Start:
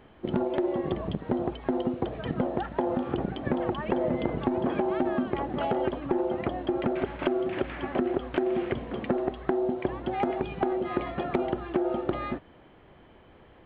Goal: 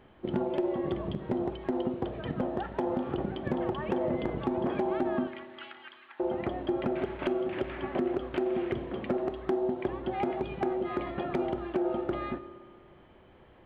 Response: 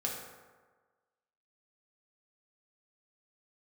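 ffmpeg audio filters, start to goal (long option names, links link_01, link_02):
-filter_complex "[0:a]asettb=1/sr,asplit=3[link_01][link_02][link_03];[link_01]atrim=end=5.274[link_04];[link_02]atrim=start=5.27:end=6.2,asetpts=PTS-STARTPTS,afade=type=in:duration=0.004:curve=qsin,afade=type=out:start_time=0.926:duration=0.004:curve=qsin,highpass=frequency=1500:width=0.5412,highpass=frequency=1500:width=1.3066[link_05];[link_03]atrim=start=6.196[link_06];[link_04][link_05]acrossfade=duration=0.004:curve1=hsin:curve2=qsin[link_07];[link_07][link_06]acrossfade=duration=0.004:curve1=qsin:curve2=hsin,volume=17dB,asoftclip=hard,volume=-17dB,asplit=2[link_08][link_09];[1:a]atrim=start_sample=2205,asetrate=33075,aresample=44100[link_10];[link_09][link_10]afir=irnorm=-1:irlink=0,volume=-13dB[link_11];[link_08][link_11]amix=inputs=2:normalize=0,volume=-5dB"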